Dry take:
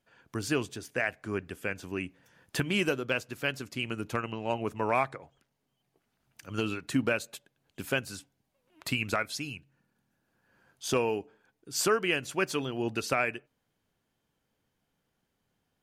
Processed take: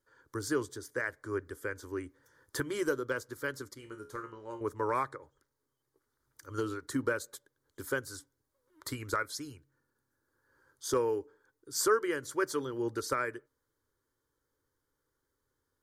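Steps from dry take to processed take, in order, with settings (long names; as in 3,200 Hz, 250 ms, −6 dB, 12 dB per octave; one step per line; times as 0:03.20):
phaser with its sweep stopped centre 710 Hz, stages 6
0:03.74–0:04.61: tuned comb filter 70 Hz, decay 0.34 s, harmonics all, mix 80%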